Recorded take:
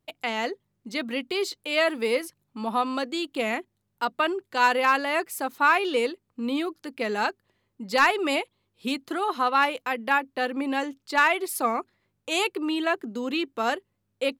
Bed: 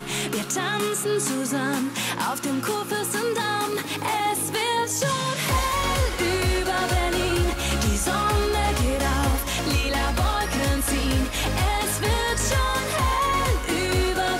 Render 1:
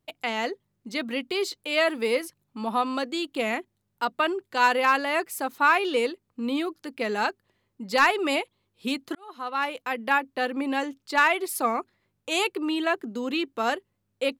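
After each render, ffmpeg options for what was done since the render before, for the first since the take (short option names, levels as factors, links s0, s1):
-filter_complex "[0:a]asplit=2[s0][s1];[s0]atrim=end=9.15,asetpts=PTS-STARTPTS,afade=t=out:st=9.146:d=0.004:c=hsin[s2];[s1]atrim=start=9.15,asetpts=PTS-STARTPTS,afade=t=in:d=0.88[s3];[s2][s3]concat=n=2:v=0:a=1"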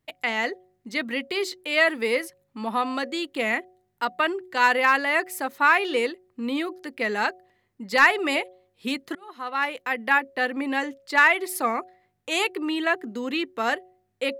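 -af "equalizer=f=1900:t=o:w=0.41:g=8,bandreject=f=183.7:t=h:w=4,bandreject=f=367.4:t=h:w=4,bandreject=f=551.1:t=h:w=4,bandreject=f=734.8:t=h:w=4"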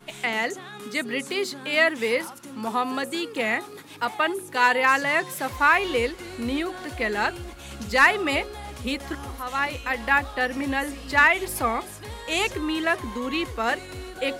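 -filter_complex "[1:a]volume=0.178[s0];[0:a][s0]amix=inputs=2:normalize=0"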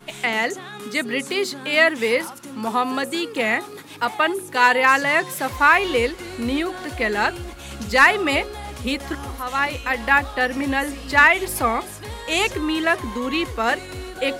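-af "volume=1.58,alimiter=limit=0.794:level=0:latency=1"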